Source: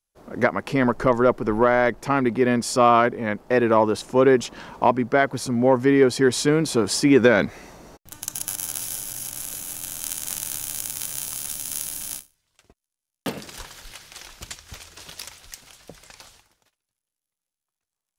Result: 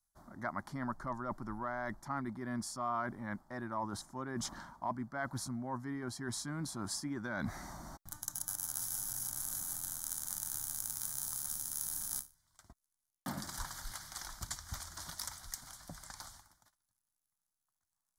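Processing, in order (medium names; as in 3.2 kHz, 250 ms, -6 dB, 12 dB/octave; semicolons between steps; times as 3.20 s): reverse; compression 4:1, threshold -34 dBFS, peak gain reduction 19.5 dB; reverse; static phaser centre 1.1 kHz, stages 4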